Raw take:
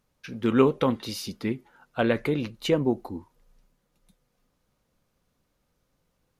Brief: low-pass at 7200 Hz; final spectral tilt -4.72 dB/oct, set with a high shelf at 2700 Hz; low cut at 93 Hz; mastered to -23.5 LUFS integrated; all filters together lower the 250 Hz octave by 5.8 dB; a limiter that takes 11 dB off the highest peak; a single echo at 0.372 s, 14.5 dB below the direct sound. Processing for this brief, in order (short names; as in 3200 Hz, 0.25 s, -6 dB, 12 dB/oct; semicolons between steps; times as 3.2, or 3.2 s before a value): HPF 93 Hz; LPF 7200 Hz; bell 250 Hz -7 dB; high shelf 2700 Hz +4 dB; limiter -19.5 dBFS; echo 0.372 s -14.5 dB; gain +10 dB